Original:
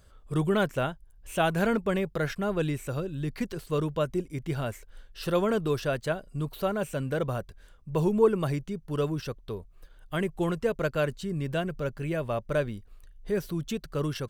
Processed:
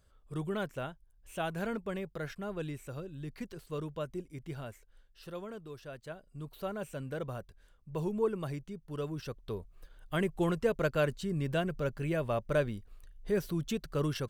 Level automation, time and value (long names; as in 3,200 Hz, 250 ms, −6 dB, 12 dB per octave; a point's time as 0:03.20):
0:04.47 −10 dB
0:05.69 −19 dB
0:06.69 −9 dB
0:09.04 −9 dB
0:09.56 −2 dB